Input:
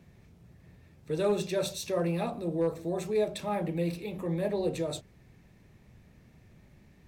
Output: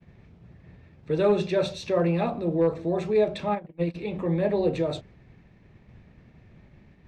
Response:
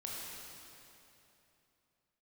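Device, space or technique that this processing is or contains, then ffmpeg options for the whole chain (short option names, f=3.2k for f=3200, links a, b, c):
hearing-loss simulation: -filter_complex "[0:a]lowpass=3.4k,agate=range=-33dB:threshold=-54dB:ratio=3:detection=peak,asplit=3[a][b][c];[a]afade=t=out:st=3.54:d=0.02[d];[b]agate=range=-31dB:threshold=-28dB:ratio=16:detection=peak,afade=t=in:st=3.54:d=0.02,afade=t=out:st=3.94:d=0.02[e];[c]afade=t=in:st=3.94:d=0.02[f];[d][e][f]amix=inputs=3:normalize=0,volume=6dB"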